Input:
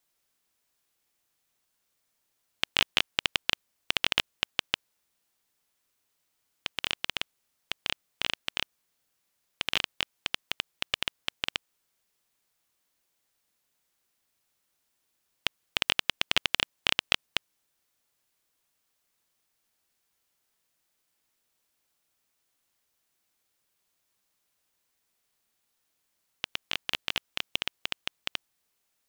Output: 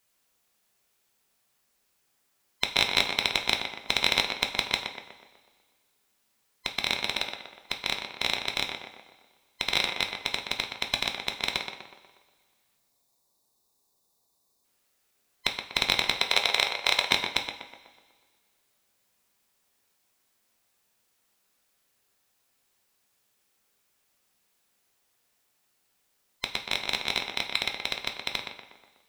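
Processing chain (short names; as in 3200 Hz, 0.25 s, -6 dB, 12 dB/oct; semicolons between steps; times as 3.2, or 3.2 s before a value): band-swap scrambler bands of 1000 Hz; 12.77–14.65 spectral gain 1200–3500 Hz -15 dB; in parallel at -7 dB: overloaded stage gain 20 dB; 16.12–17.07 on the sum: resonant low shelf 370 Hz -9 dB, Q 1.5; on a send: tape echo 0.122 s, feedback 57%, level -4.5 dB, low-pass 2400 Hz; on the sum: two-slope reverb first 0.43 s, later 1.9 s, from -18 dB, DRR 4.5 dB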